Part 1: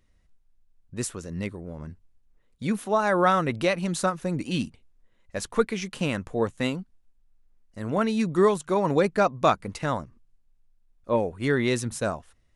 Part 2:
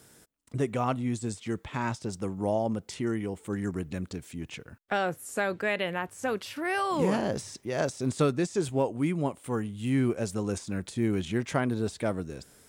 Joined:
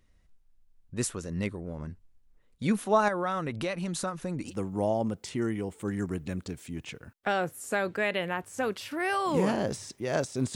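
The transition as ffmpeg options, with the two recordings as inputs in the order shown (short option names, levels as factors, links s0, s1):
-filter_complex "[0:a]asettb=1/sr,asplit=3[s0][s1][s2];[s0]atrim=end=3.084[s3];[s1]atrim=start=3.08:end=4.54,asetpts=PTS-STARTPTS,afade=t=in:d=0.004:c=qsin,afade=t=out:st=1.456:d=0.004:c=qsin,acompressor=threshold=0.0282:ratio=2.5:attack=3.2:release=140:knee=1:detection=peak[s4];[s2]atrim=start=4.536[s5];[s3][s4]acrossfade=d=0.004:c1=hsin:c2=qsin[s6];[s6][s5]acrossfade=d=0.004:c1=qsin:c2=hsin,apad=whole_dur=10.55,atrim=end=10.55,atrim=end=4.54,asetpts=PTS-STARTPTS[s7];[1:a]atrim=start=2.09:end=8.2,asetpts=PTS-STARTPTS[s8];[s7][s8]acrossfade=d=0.1:c1=tri:c2=tri"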